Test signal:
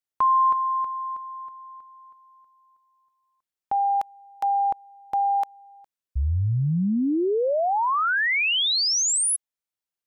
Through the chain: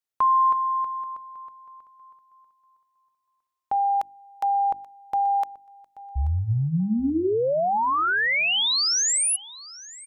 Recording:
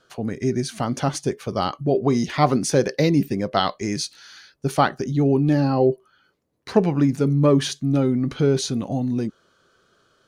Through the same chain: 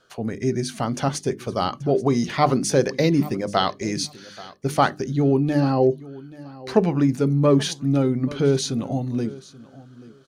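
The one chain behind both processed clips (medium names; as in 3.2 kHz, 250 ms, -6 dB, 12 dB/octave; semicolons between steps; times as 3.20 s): hum notches 50/100/150/200/250/300/350 Hz; on a send: feedback delay 832 ms, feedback 18%, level -19.5 dB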